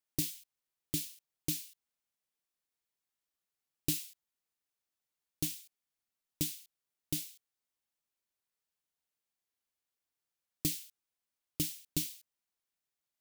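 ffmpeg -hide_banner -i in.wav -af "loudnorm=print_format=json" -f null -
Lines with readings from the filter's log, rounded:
"input_i" : "-37.2",
"input_tp" : "-15.9",
"input_lra" : "4.2",
"input_thresh" : "-48.3",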